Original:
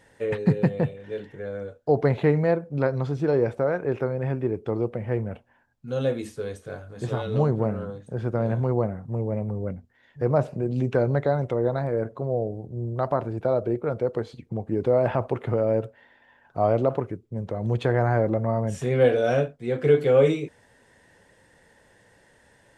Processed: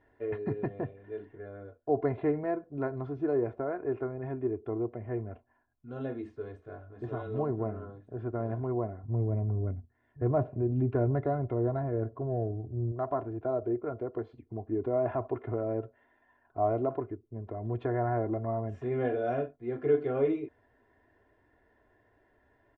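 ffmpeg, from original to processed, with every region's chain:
-filter_complex "[0:a]asettb=1/sr,asplit=3[a][b][c];[a]atrim=end=9.034[d];[b]atrim=start=9.03:end=12.92,asetpts=PTS-STARTPTS,afade=t=in:d=0.004:c=qsin,afade=t=out:st=3.886:d=0.004:c=qsin,equalizer=f=100:t=o:w=2.1:g=9,adynamicsmooth=sensitivity=5.5:basefreq=3.6k[e];[c]atrim=start=12.916[f];[d][e]acrossfade=d=0.004:c1=hsin:c2=qsin[g];[g][f]acrossfade=d=0.004:c1=qsin:c2=hsin,lowpass=1.5k,aecho=1:1:2.9:0.77,volume=-8.5dB"

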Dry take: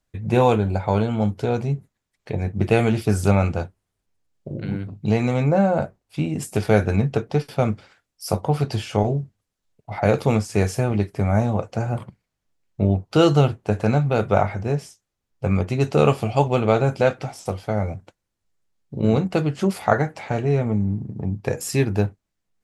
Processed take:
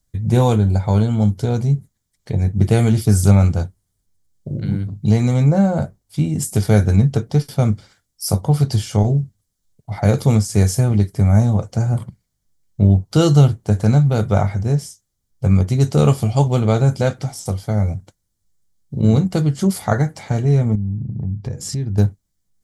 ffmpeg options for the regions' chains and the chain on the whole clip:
-filter_complex "[0:a]asettb=1/sr,asplit=3[a][b][c];[a]atrim=end=20.754[d];[b]atrim=start=20.75:end=21.98,asetpts=PTS-STARTPTS,afade=t=in:d=0.004:c=qsin,afade=t=out:st=1.226:d=0.004:c=qsin,lowpass=5.4k,lowshelf=f=320:g=9.5,acompressor=threshold=-31dB:ratio=3:attack=3.2:release=140:knee=1:detection=peak[e];[c]atrim=start=21.976[f];[d][e]acrossfade=d=0.004:c1=hsin:c2=qsin[g];[g][f]acrossfade=d=0.004:c1=qsin:c2=hsin,bass=f=250:g=11,treble=f=4k:g=13,bandreject=f=2.6k:w=6.4,volume=-2.5dB"

